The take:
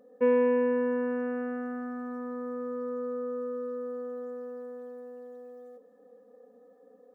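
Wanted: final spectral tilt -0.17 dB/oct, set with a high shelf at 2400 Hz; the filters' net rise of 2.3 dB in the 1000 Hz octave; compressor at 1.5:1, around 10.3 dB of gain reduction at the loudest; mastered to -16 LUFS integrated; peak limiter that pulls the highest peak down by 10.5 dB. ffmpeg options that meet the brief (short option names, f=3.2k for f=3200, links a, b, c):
-af "equalizer=f=1k:t=o:g=3.5,highshelf=f=2.4k:g=-5,acompressor=threshold=-49dB:ratio=1.5,volume=27dB,alimiter=limit=-8.5dB:level=0:latency=1"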